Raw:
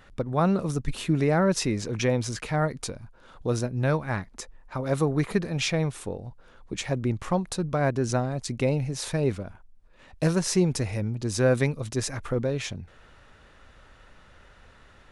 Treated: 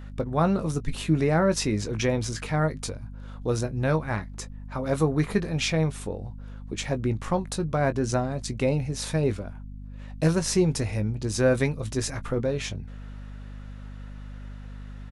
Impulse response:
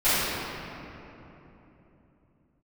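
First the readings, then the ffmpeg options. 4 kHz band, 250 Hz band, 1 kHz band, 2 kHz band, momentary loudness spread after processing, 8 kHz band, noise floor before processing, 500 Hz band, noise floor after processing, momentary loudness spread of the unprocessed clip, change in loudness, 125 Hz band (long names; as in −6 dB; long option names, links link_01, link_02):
+0.5 dB, +0.5 dB, +0.5 dB, +0.5 dB, 19 LU, +0.5 dB, −54 dBFS, +0.5 dB, −40 dBFS, 13 LU, +0.5 dB, +0.5 dB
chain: -filter_complex "[0:a]asplit=2[link_01][link_02];[link_02]adelay=19,volume=-10.5dB[link_03];[link_01][link_03]amix=inputs=2:normalize=0,aeval=exprs='val(0)+0.0126*(sin(2*PI*50*n/s)+sin(2*PI*2*50*n/s)/2+sin(2*PI*3*50*n/s)/3+sin(2*PI*4*50*n/s)/4+sin(2*PI*5*50*n/s)/5)':channel_layout=same"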